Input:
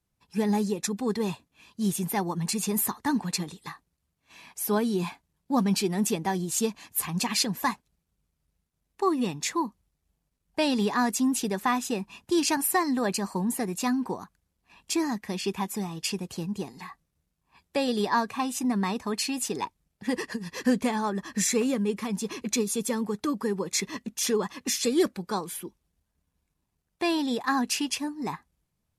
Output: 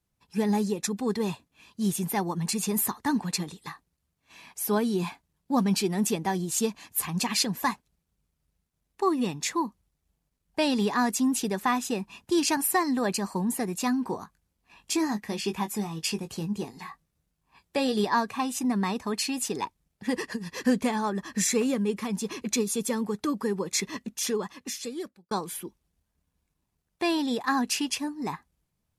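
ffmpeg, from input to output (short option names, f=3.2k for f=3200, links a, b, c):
-filter_complex "[0:a]asettb=1/sr,asplit=3[a][b][c];[a]atrim=end=14.044[d];[b]atrim=start=14.04:end=18.04,asetpts=PTS-STARTPTS,afade=t=in:d=0.004:c=qsin,afade=t=out:st=3.996:d=0.004:c=qsin,asplit=2[e][f];[f]adelay=19,volume=-8.5dB[g];[e][g]amix=inputs=2:normalize=0,atrim=end_sample=176400[h];[c]atrim=start=18.036[i];[d][h]acrossfade=d=0.004:c1=hsin:c2=qsin[j];[j][i]acrossfade=d=0.004:c1=qsin:c2=hsin,asplit=2[k][l];[k]atrim=end=25.31,asetpts=PTS-STARTPTS,afade=t=out:st=23.97:d=1.34[m];[l]atrim=start=25.31,asetpts=PTS-STARTPTS,afade=t=in:d=0.004:c=hsin[n];[m][n]concat=n=2:v=0:a=1"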